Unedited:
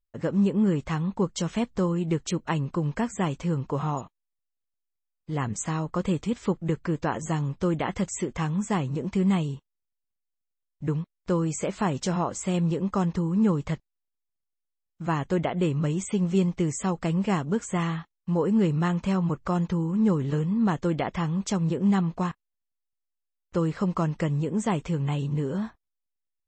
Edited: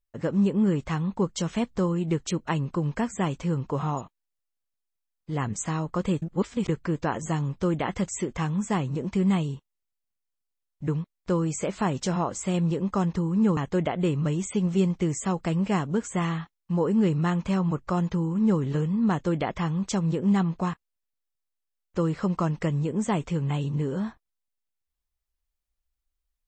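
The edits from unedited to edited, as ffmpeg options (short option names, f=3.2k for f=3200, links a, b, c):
-filter_complex "[0:a]asplit=4[a][b][c][d];[a]atrim=end=6.222[e];[b]atrim=start=6.218:end=6.682,asetpts=PTS-STARTPTS,areverse[f];[c]atrim=start=6.678:end=13.572[g];[d]atrim=start=15.148[h];[e][f]acrossfade=d=0.004:c1=hsin:c2=hsin[i];[i][g]acrossfade=d=0.004:c1=hsin:c2=hsin[j];[j][h]acrossfade=d=0.004:c1=hsin:c2=hsin"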